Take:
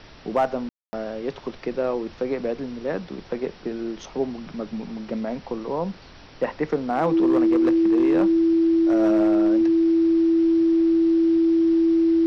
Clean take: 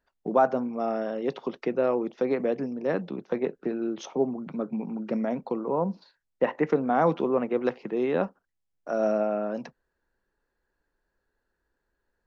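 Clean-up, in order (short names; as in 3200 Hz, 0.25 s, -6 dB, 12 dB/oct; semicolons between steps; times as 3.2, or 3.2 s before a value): clip repair -13.5 dBFS; notch 330 Hz, Q 30; room tone fill 0.69–0.93; noise print and reduce 30 dB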